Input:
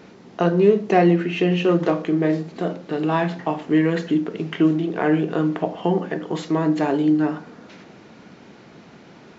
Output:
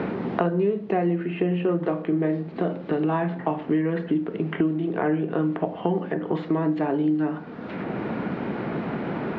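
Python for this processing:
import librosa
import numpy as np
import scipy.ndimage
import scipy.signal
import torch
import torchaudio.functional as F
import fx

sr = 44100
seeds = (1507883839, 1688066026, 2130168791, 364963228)

y = fx.air_absorb(x, sr, metres=420.0)
y = fx.band_squash(y, sr, depth_pct=100)
y = F.gain(torch.from_numpy(y), -3.5).numpy()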